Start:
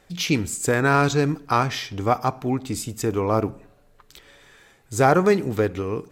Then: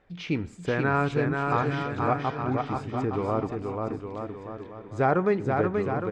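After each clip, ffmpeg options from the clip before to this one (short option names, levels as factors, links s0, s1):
-af "lowpass=2300,aecho=1:1:480|864|1171|1417|1614:0.631|0.398|0.251|0.158|0.1,volume=0.501"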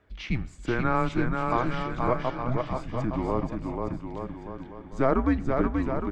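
-af "afreqshift=-130"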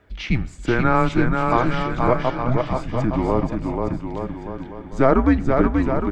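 -af "bandreject=f=1100:w=20,volume=2.37"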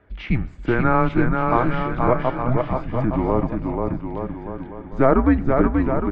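-af "lowpass=2300"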